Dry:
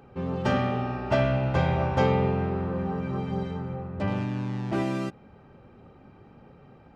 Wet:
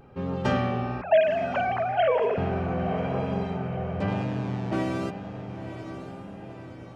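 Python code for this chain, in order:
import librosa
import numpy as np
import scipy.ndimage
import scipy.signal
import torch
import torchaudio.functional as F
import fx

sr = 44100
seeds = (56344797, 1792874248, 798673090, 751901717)

y = fx.sine_speech(x, sr, at=(1.01, 2.38))
y = fx.echo_diffused(y, sr, ms=1015, feedback_pct=53, wet_db=-9.5)
y = fx.vibrato(y, sr, rate_hz=0.99, depth_cents=41.0)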